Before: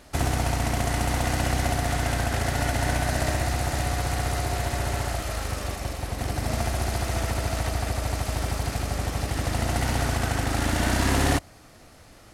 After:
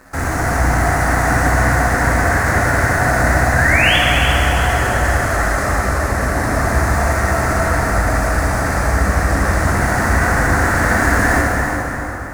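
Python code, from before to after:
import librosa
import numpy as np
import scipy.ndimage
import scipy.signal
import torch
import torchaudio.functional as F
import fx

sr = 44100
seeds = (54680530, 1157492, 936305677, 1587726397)

p1 = fx.peak_eq(x, sr, hz=7300.0, db=10.5, octaves=2.0)
p2 = fx.leveller(p1, sr, passes=5)
p3 = fx.high_shelf_res(p2, sr, hz=2300.0, db=-10.5, q=3.0)
p4 = fx.spec_paint(p3, sr, seeds[0], shape='rise', start_s=3.55, length_s=0.42, low_hz=1500.0, high_hz=3500.0, level_db=-10.0)
p5 = p4 + fx.echo_feedback(p4, sr, ms=344, feedback_pct=37, wet_db=-8, dry=0)
p6 = fx.rev_plate(p5, sr, seeds[1], rt60_s=3.7, hf_ratio=0.55, predelay_ms=0, drr_db=-5.5)
y = p6 * 10.0 ** (-10.0 / 20.0)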